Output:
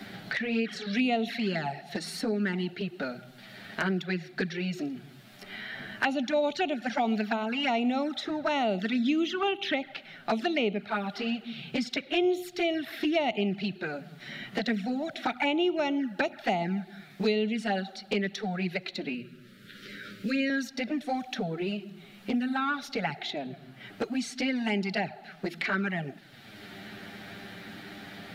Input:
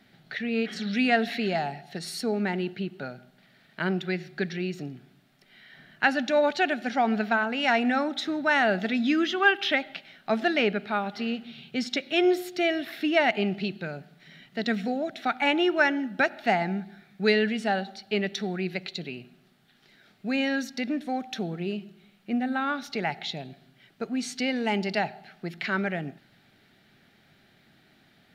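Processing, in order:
flanger swept by the level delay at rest 10.7 ms, full sweep at −21 dBFS
0:19.14–0:20.50: elliptic band-stop filter 560–1,300 Hz, stop band 40 dB
multiband upward and downward compressor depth 70%

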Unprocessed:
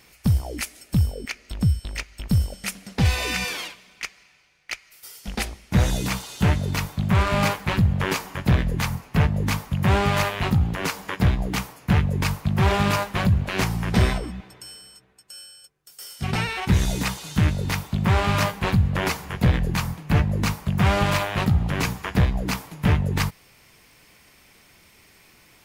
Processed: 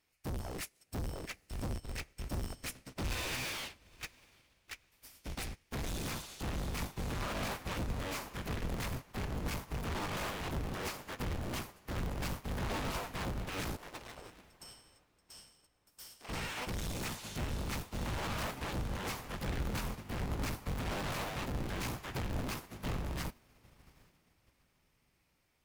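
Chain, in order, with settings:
sub-harmonics by changed cycles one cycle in 3, inverted
brickwall limiter −17.5 dBFS, peak gain reduction 9.5 dB
hard clipping −33 dBFS, distortion −5 dB
0:13.76–0:16.29: high-pass filter 430 Hz 12 dB per octave
feedback delay with all-pass diffusion 811 ms, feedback 56%, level −11 dB
expander for the loud parts 2.5 to 1, over −48 dBFS

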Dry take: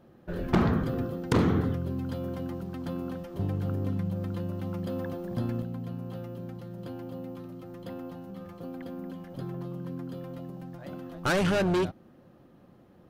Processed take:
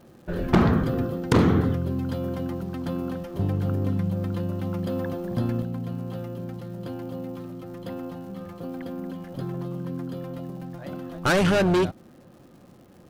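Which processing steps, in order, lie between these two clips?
surface crackle 230 per second −53 dBFS
level +5 dB

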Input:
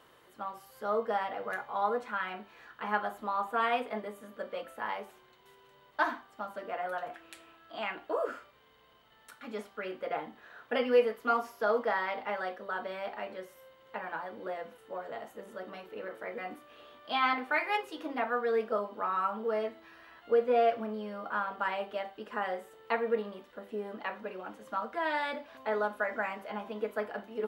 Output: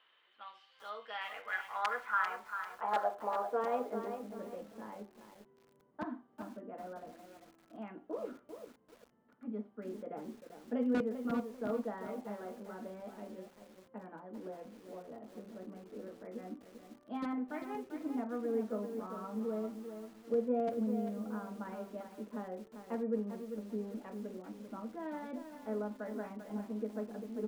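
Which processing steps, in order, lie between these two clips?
low-pass that shuts in the quiet parts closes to 2,200 Hz, open at −28.5 dBFS
wrap-around overflow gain 17.5 dB
band-pass filter sweep 3,200 Hz → 230 Hz, 0:01.01–0:04.36
feedback echo at a low word length 394 ms, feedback 35%, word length 10 bits, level −8 dB
level +5 dB

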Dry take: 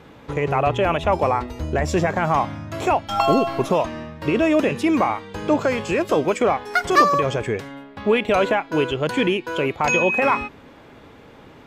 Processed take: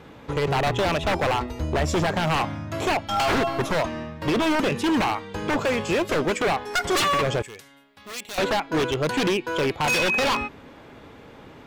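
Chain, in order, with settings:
wave folding −16.5 dBFS
0:07.42–0:08.38: first-order pre-emphasis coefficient 0.9

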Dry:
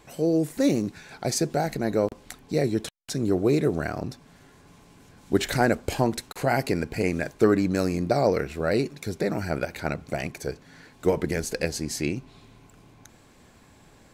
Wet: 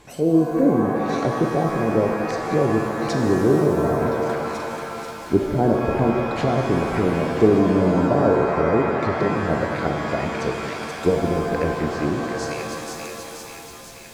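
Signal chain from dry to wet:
delay with a high-pass on its return 483 ms, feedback 64%, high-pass 1,500 Hz, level −7.5 dB
treble cut that deepens with the level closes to 580 Hz, closed at −22.5 dBFS
reverb with rising layers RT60 2.8 s, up +7 semitones, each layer −2 dB, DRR 2.5 dB
level +4 dB

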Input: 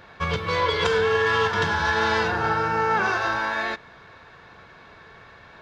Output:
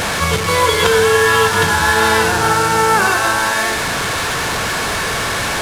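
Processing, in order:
linear delta modulator 64 kbit/s, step −21.5 dBFS
in parallel at −11 dB: bit-depth reduction 6 bits, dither none
on the sum: level +6.5 dB

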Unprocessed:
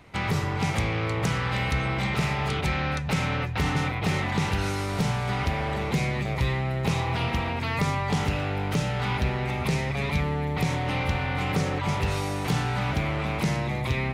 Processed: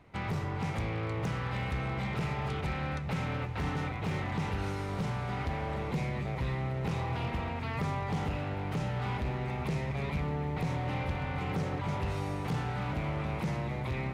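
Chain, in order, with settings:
high-shelf EQ 2,400 Hz −9 dB
hard clipping −22 dBFS, distortion −17 dB
feedback delay with all-pass diffusion 1,118 ms, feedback 71%, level −14 dB
level −6 dB

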